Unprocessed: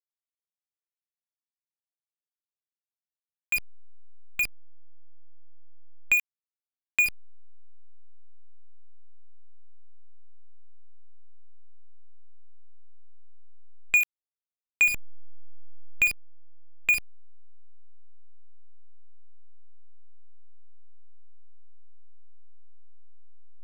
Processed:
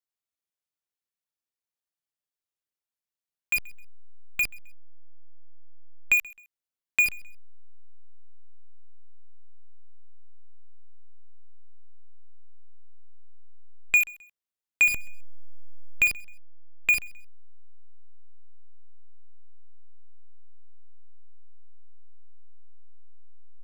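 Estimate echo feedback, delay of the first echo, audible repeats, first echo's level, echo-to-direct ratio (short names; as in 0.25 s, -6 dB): 33%, 0.131 s, 2, -23.0 dB, -22.5 dB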